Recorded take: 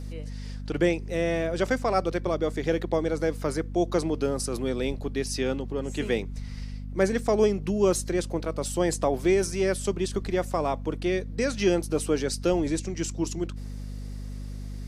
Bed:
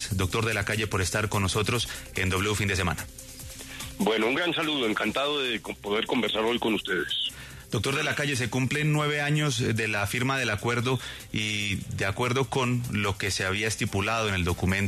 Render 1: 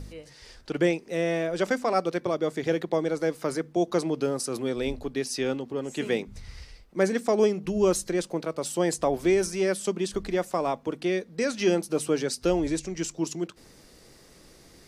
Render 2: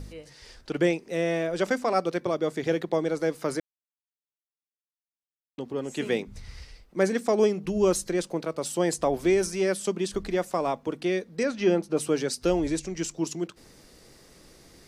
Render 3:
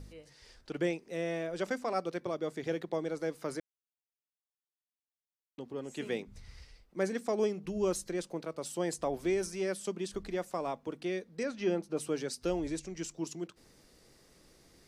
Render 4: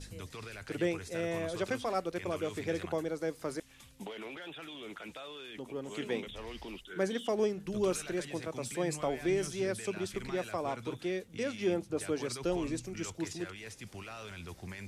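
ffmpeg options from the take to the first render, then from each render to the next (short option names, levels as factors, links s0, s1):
-af "bandreject=f=50:t=h:w=4,bandreject=f=100:t=h:w=4,bandreject=f=150:t=h:w=4,bandreject=f=200:t=h:w=4,bandreject=f=250:t=h:w=4"
-filter_complex "[0:a]asettb=1/sr,asplit=3[s0][s1][s2];[s0]atrim=end=11.434[s3];[s1]atrim=start=11.43:end=11.97,asetpts=PTS-STARTPTS,afade=t=in:d=0.004:c=qsin,afade=t=out:st=0.536:d=0.004:c=qsin,aemphasis=mode=reproduction:type=75fm[s4];[s2]atrim=start=11.966[s5];[s3][s4]acrossfade=d=0.004:c1=hsin:c2=qsin[s6];[s6][s5]acrossfade=d=0.004:c1=qsin:c2=hsin,asplit=3[s7][s8][s9];[s7]atrim=end=3.6,asetpts=PTS-STARTPTS,afade=t=out:st=3.596:d=0.004:c=hsin[s10];[s8]atrim=start=3.6:end=5.58,asetpts=PTS-STARTPTS,volume=0[s11];[s9]atrim=start=5.58,asetpts=PTS-STARTPTS,afade=t=in:d=0.004:c=hsin[s12];[s10][s11][s12]concat=n=3:v=0:a=1"
-af "volume=0.376"
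-filter_complex "[1:a]volume=0.112[s0];[0:a][s0]amix=inputs=2:normalize=0"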